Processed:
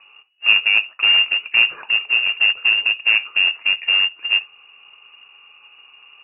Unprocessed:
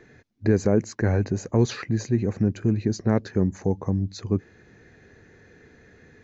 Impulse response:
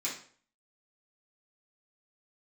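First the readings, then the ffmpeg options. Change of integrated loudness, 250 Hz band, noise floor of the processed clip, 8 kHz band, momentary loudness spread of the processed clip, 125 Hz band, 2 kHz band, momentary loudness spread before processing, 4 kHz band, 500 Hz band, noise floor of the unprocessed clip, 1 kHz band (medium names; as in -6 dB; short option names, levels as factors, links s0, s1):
+9.5 dB, under -25 dB, -50 dBFS, no reading, 6 LU, under -30 dB, +25.0 dB, 5 LU, +28.0 dB, under -15 dB, -55 dBFS, +2.0 dB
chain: -filter_complex "[0:a]aemphasis=mode=reproduction:type=bsi,asplit=2[s0][s1];[1:a]atrim=start_sample=2205,atrim=end_sample=3528[s2];[s1][s2]afir=irnorm=-1:irlink=0,volume=0.237[s3];[s0][s3]amix=inputs=2:normalize=0,acrusher=bits=3:mode=log:mix=0:aa=0.000001,lowpass=f=2500:t=q:w=0.5098,lowpass=f=2500:t=q:w=0.6013,lowpass=f=2500:t=q:w=0.9,lowpass=f=2500:t=q:w=2.563,afreqshift=-2900,volume=0.891"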